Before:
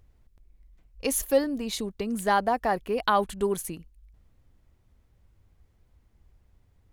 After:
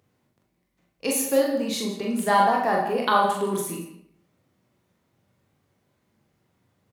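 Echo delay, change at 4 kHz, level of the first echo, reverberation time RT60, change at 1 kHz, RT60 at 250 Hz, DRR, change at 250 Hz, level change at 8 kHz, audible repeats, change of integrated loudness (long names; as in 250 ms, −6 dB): 41 ms, +4.0 dB, −4.5 dB, 0.70 s, +5.0 dB, 0.70 s, −2.0 dB, +3.5 dB, +3.0 dB, 2, +4.0 dB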